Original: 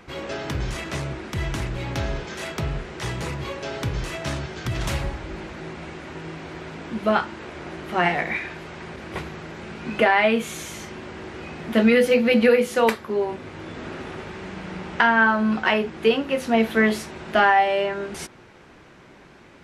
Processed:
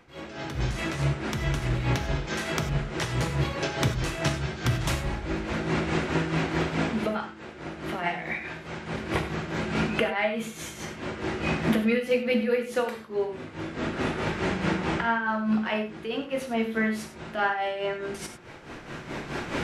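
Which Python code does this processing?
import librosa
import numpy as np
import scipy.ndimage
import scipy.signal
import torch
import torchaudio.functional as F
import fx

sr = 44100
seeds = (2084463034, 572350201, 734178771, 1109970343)

y = fx.recorder_agc(x, sr, target_db=-7.5, rise_db_per_s=14.0, max_gain_db=30)
y = y * (1.0 - 0.71 / 2.0 + 0.71 / 2.0 * np.cos(2.0 * np.pi * 4.7 * (np.arange(len(y)) / sr)))
y = fx.rev_gated(y, sr, seeds[0], gate_ms=120, shape='flat', drr_db=5.5)
y = y * 10.0 ** (-8.0 / 20.0)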